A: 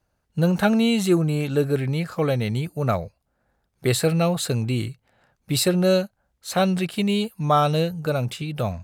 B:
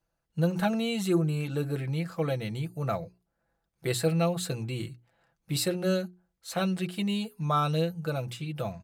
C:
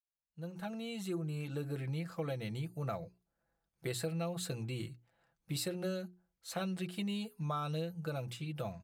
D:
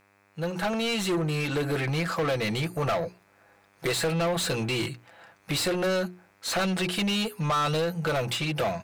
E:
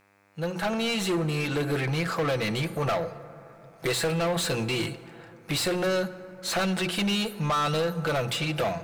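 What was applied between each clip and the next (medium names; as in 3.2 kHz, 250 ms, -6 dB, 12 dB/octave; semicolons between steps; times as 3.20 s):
hum notches 60/120/180/240/300/360/420 Hz; comb 6 ms, depth 54%; trim -8.5 dB
fade-in on the opening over 1.91 s; compression, threshold -28 dBFS, peak gain reduction 8 dB; trim -5.5 dB
overdrive pedal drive 26 dB, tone 4.7 kHz, clips at -24 dBFS; mains buzz 100 Hz, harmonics 26, -69 dBFS -1 dB/octave; trim +5.5 dB
plate-style reverb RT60 3.3 s, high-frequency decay 0.35×, DRR 13.5 dB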